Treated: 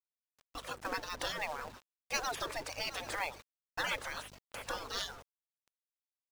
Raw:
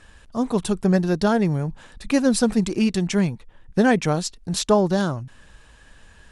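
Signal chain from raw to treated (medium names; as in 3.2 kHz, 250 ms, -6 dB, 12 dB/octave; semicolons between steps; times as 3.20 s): de-hum 59.56 Hz, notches 3; spectral gate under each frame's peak -25 dB weak; hum 50 Hz, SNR 17 dB; on a send: shuffle delay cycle 891 ms, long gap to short 3:1, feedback 33%, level -14 dB; on the sum: spectral gate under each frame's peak -15 dB strong; gate with hold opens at -33 dBFS; peaking EQ 520 Hz +6.5 dB 0.8 oct; companded quantiser 4-bit; FFT filter 510 Hz 0 dB, 1 kHz +2 dB, 6.5 kHz -2 dB, 10 kHz -5 dB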